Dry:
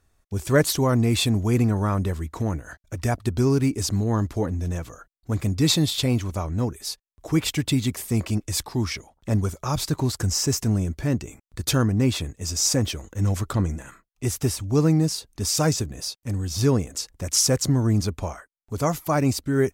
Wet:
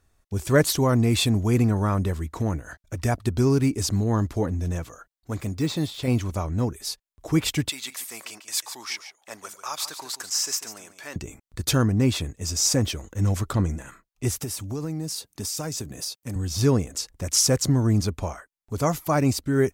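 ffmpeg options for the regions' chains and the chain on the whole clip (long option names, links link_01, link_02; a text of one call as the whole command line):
ffmpeg -i in.wav -filter_complex "[0:a]asettb=1/sr,asplit=3[link_01][link_02][link_03];[link_01]atrim=end=4.844[link_04];[link_02]atrim=start=4.84:end=6.08,asetpts=PTS-STARTPTS,afade=type=in:duration=0.004:curve=qsin,afade=type=out:start_time=1.236:duration=0.004:curve=qsin,lowshelf=frequency=300:gain=-7,deesser=0.85[link_05];[link_03]atrim=start=6.076[link_06];[link_04][link_05]acrossfade=duration=0.004:curve1=hsin:curve2=qsin[link_07];[link_07][link_06]acrossfade=duration=0.004:curve1=qsin:curve2=hsin,asettb=1/sr,asplit=3[link_08][link_09][link_10];[link_08]atrim=end=7.694[link_11];[link_09]atrim=start=7.69:end=11.16,asetpts=PTS-STARTPTS,afade=type=in:duration=0.004:curve=qsin,afade=type=out:start_time=3.466:duration=0.004:curve=qsin,highpass=990,aecho=1:1:143:0.266,atrim=end_sample=153027[link_12];[link_10]atrim=start=11.156[link_13];[link_11][link_12]acrossfade=duration=0.004:curve1=hsin:curve2=qsin[link_14];[link_14][link_13]acrossfade=duration=0.004:curve1=qsin:curve2=hsin,asettb=1/sr,asplit=3[link_15][link_16][link_17];[link_15]atrim=end=14.394[link_18];[link_16]atrim=start=14.39:end=16.36,asetpts=PTS-STARTPTS,afade=type=in:duration=0.004:curve=qsin,afade=type=out:start_time=1.966:duration=0.004:curve=qsin,highpass=110,highshelf=frequency=8800:gain=8,acompressor=threshold=-26dB:ratio=12:attack=3.2:release=140:knee=1:detection=peak[link_19];[link_17]atrim=start=16.356[link_20];[link_18][link_19]acrossfade=duration=0.004:curve1=hsin:curve2=qsin[link_21];[link_21][link_20]acrossfade=duration=0.004:curve1=qsin:curve2=hsin" out.wav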